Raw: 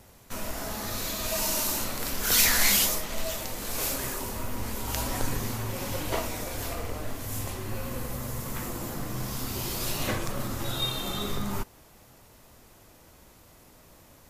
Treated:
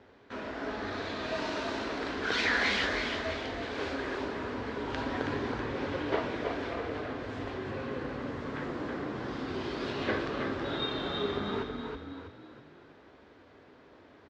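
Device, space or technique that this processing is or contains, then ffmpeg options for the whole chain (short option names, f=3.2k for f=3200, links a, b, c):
frequency-shifting delay pedal into a guitar cabinet: -filter_complex "[0:a]asplit=6[a][b][c][d][e][f];[b]adelay=323,afreqshift=37,volume=-5.5dB[g];[c]adelay=646,afreqshift=74,volume=-13dB[h];[d]adelay=969,afreqshift=111,volume=-20.6dB[i];[e]adelay=1292,afreqshift=148,volume=-28.1dB[j];[f]adelay=1615,afreqshift=185,volume=-35.6dB[k];[a][g][h][i][j][k]amix=inputs=6:normalize=0,highpass=100,equalizer=f=120:t=q:w=4:g=-7,equalizer=f=180:t=q:w=4:g=-7,equalizer=f=280:t=q:w=4:g=6,equalizer=f=420:t=q:w=4:g=8,equalizer=f=1.6k:t=q:w=4:g=6,equalizer=f=2.7k:t=q:w=4:g=-3,lowpass=f=3.7k:w=0.5412,lowpass=f=3.7k:w=1.3066,volume=-2.5dB"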